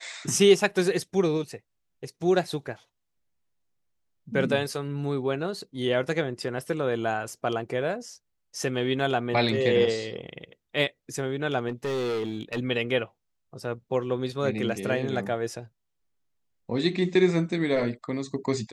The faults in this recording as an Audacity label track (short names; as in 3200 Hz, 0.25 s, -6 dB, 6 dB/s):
11.680000	12.590000	clipped -25.5 dBFS